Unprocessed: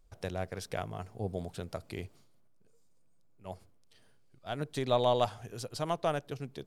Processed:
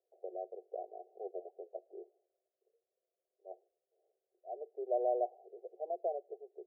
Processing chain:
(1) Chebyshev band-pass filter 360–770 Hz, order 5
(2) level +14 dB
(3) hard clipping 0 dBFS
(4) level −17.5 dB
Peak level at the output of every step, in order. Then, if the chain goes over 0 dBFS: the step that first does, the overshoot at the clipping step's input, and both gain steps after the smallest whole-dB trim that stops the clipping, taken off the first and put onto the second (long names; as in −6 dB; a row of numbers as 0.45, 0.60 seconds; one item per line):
−19.0, −5.0, −5.0, −22.5 dBFS
no step passes full scale